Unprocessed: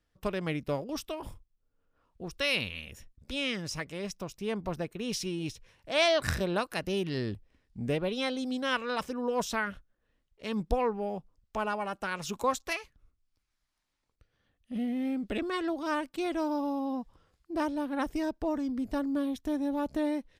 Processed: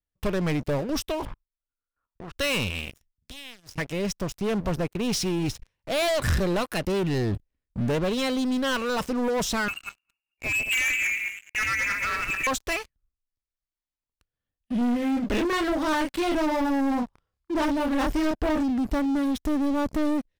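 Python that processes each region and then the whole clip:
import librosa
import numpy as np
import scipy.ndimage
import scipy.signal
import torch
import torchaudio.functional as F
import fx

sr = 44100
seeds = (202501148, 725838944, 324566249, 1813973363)

y = fx.chain(x, sr, fx.lowpass(hz=3300.0, slope=24),
    fx.peak_eq(hz=1400.0, db=15.0, octaves=1.0),
    fx.level_steps(step_db=16), at=(1.25, 2.36))
y = fx.chain(y, sr, fx.tone_stack(knobs='6-0-2'),
    fx.band_squash(depth_pct=70), at=(2.9, 3.78))
y = fx.chain(y, sr, fx.reverse_delay_fb(ms=107, feedback_pct=41, wet_db=-5),
    fx.hum_notches(base_hz=60, count=7),
    fx.freq_invert(carrier_hz=2800), at=(9.68, 12.47))
y = fx.chain(y, sr, fx.peak_eq(hz=1700.0, db=3.0, octaves=3.0),
    fx.doubler(ms=29.0, db=-3.5), at=(14.78, 18.63))
y = fx.leveller(y, sr, passes=5)
y = fx.low_shelf(y, sr, hz=110.0, db=7.5)
y = y * 10.0 ** (-8.5 / 20.0)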